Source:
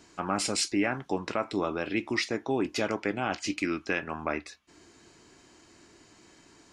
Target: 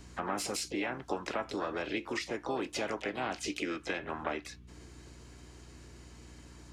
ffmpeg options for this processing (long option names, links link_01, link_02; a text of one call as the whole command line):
ffmpeg -i in.wav -filter_complex "[0:a]aeval=exprs='val(0)+0.00282*(sin(2*PI*60*n/s)+sin(2*PI*2*60*n/s)/2+sin(2*PI*3*60*n/s)/3+sin(2*PI*4*60*n/s)/4+sin(2*PI*5*60*n/s)/5)':channel_layout=same,acrossover=split=290|660[link_01][link_02][link_03];[link_01]acompressor=threshold=-46dB:ratio=4[link_04];[link_02]acompressor=threshold=-36dB:ratio=4[link_05];[link_03]acompressor=threshold=-35dB:ratio=4[link_06];[link_04][link_05][link_06]amix=inputs=3:normalize=0,asplit=3[link_07][link_08][link_09];[link_08]asetrate=55563,aresample=44100,atempo=0.793701,volume=-8dB[link_10];[link_09]asetrate=66075,aresample=44100,atempo=0.66742,volume=-13dB[link_11];[link_07][link_10][link_11]amix=inputs=3:normalize=0,volume=-1dB" out.wav